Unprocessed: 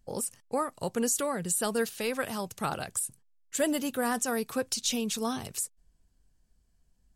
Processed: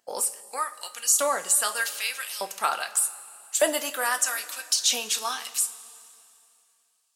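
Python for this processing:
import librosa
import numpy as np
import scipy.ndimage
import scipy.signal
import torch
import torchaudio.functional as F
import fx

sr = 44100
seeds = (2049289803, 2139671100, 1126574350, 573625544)

y = fx.filter_lfo_highpass(x, sr, shape='saw_up', hz=0.83, low_hz=600.0, high_hz=3900.0, q=0.97)
y = fx.rev_double_slope(y, sr, seeds[0], early_s=0.24, late_s=2.6, knee_db=-18, drr_db=6.5)
y = y * librosa.db_to_amplitude(7.0)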